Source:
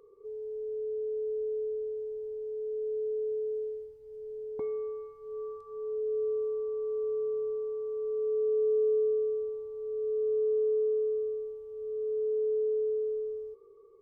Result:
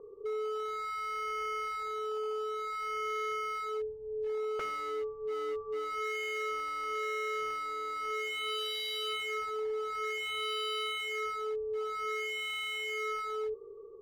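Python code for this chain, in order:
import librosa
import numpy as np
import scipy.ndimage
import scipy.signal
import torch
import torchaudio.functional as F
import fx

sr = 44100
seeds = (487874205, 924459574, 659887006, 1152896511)

y = scipy.signal.sosfilt(scipy.signal.butter(4, 1100.0, 'lowpass', fs=sr, output='sos'), x)
y = 10.0 ** (-38.5 / 20.0) * (np.abs((y / 10.0 ** (-38.5 / 20.0) + 3.0) % 4.0 - 2.0) - 1.0)
y = y * librosa.db_to_amplitude(7.5)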